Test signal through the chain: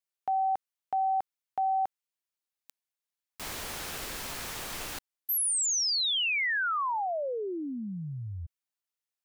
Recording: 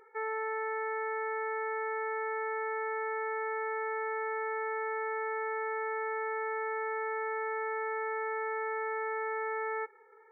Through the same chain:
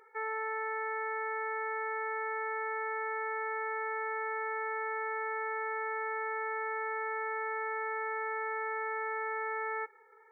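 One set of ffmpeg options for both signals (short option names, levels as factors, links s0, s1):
-af "lowshelf=f=470:g=-9.5,volume=1.19"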